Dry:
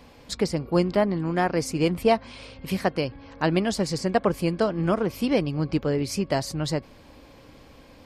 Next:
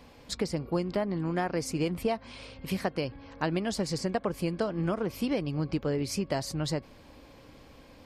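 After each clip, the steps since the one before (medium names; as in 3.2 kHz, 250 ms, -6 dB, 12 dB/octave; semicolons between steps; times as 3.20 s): compression, threshold -22 dBFS, peak gain reduction 8 dB; trim -3 dB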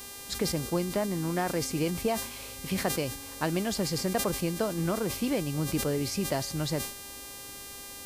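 mains buzz 400 Hz, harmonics 36, -44 dBFS 0 dB/octave; decay stretcher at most 85 dB/s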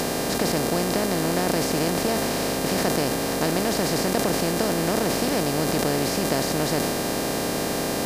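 spectral levelling over time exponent 0.2; trim -2 dB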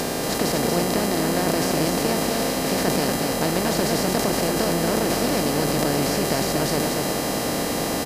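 delay 236 ms -4 dB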